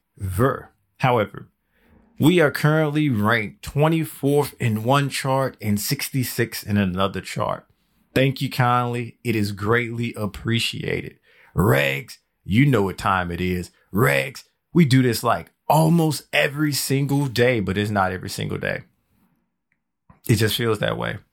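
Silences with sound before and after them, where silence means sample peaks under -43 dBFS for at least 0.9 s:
18.83–20.1

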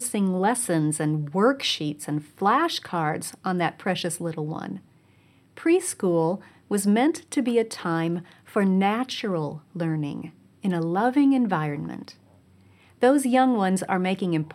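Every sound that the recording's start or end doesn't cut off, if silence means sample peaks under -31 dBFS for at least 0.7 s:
5.57–12.1

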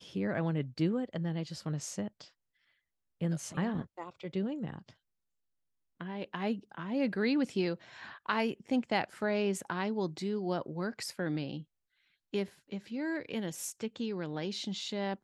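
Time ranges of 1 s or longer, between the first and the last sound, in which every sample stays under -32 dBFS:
2.08–3.22
4.78–6.01

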